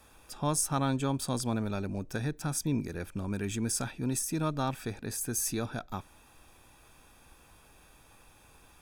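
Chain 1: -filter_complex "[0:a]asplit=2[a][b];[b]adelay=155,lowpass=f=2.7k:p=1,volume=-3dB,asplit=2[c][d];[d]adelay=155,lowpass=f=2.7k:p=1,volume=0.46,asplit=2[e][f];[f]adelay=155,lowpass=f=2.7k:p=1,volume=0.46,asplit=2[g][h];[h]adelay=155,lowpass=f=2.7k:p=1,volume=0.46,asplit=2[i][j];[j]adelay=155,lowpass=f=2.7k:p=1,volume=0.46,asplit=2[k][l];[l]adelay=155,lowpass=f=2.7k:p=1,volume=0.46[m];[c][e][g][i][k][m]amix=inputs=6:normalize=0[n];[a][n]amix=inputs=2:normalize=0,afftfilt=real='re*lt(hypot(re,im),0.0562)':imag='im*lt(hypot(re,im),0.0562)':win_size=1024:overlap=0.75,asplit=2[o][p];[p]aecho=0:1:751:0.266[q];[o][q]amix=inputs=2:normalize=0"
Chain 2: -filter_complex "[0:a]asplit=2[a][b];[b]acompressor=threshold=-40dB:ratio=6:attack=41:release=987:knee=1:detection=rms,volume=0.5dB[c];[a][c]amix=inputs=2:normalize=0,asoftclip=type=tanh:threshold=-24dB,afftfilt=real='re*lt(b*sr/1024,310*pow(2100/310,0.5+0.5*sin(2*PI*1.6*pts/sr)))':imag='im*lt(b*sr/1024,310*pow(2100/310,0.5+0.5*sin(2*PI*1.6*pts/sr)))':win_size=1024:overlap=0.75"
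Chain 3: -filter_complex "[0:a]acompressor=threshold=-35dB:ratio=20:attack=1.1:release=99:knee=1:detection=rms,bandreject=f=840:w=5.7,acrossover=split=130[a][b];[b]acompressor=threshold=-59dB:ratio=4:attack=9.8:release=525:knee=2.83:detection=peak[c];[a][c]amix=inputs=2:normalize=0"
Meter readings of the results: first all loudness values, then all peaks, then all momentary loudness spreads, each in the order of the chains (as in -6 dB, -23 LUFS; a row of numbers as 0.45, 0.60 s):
-38.0, -35.0, -53.5 LUFS; -21.5, -22.5, -37.5 dBFS; 21, 7, 11 LU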